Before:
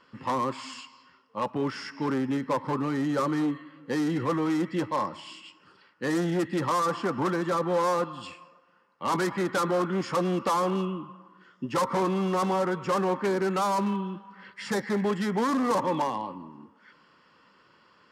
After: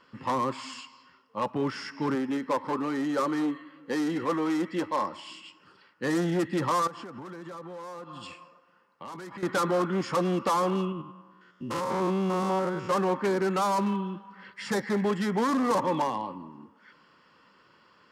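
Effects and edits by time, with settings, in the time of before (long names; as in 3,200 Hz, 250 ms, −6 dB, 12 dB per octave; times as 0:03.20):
0:02.15–0:05.30: parametric band 130 Hz −12 dB
0:06.87–0:09.43: downward compressor 20 to 1, threshold −37 dBFS
0:10.92–0:12.91: spectrum averaged block by block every 100 ms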